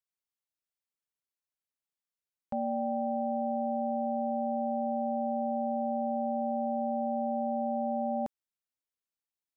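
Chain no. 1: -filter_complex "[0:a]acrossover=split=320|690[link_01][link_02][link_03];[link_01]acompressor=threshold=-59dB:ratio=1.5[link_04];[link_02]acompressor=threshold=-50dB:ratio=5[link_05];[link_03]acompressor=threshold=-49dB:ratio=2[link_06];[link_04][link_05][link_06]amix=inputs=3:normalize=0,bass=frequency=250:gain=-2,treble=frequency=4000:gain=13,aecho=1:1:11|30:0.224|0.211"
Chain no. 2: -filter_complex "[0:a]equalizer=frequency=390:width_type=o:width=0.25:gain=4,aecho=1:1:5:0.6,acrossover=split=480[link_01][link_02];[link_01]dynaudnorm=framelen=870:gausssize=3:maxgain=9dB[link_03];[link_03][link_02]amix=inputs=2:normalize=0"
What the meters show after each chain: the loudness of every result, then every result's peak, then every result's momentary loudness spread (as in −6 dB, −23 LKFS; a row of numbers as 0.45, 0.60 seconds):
−43.5, −23.0 LKFS; −30.0, −14.5 dBFS; 0, 1 LU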